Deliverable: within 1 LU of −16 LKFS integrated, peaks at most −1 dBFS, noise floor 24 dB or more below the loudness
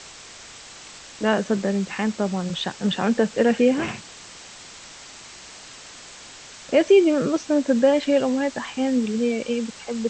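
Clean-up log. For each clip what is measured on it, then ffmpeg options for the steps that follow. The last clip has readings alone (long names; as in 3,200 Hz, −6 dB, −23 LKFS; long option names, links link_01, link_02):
background noise floor −43 dBFS; target noise floor −46 dBFS; integrated loudness −22.0 LKFS; sample peak −6.0 dBFS; target loudness −16.0 LKFS
→ -af "afftdn=noise_reduction=6:noise_floor=-43"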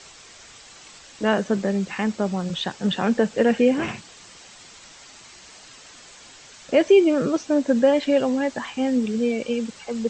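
background noise floor −47 dBFS; integrated loudness −22.0 LKFS; sample peak −6.0 dBFS; target loudness −16.0 LKFS
→ -af "volume=6dB,alimiter=limit=-1dB:level=0:latency=1"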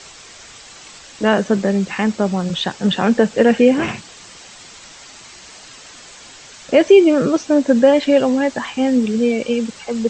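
integrated loudness −16.0 LKFS; sample peak −1.0 dBFS; background noise floor −41 dBFS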